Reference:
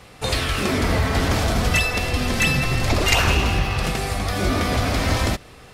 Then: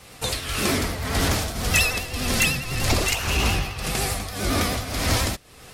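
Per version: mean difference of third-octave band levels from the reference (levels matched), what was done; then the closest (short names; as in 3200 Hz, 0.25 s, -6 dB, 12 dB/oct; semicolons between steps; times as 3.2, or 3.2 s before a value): 4.0 dB: high shelf 4900 Hz +11.5 dB; in parallel at -6 dB: hard clip -17 dBFS, distortion -10 dB; on the sum: tremolo triangle 1.8 Hz, depth 75%; vibrato 10 Hz 62 cents; gain -4 dB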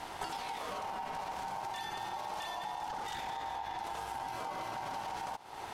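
8.0 dB: low shelf 130 Hz +8 dB; limiter -15.5 dBFS, peak gain reduction 12.5 dB; compressor 16:1, threshold -36 dBFS, peak gain reduction 17.5 dB; ring modulator 850 Hz; gain +2 dB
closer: first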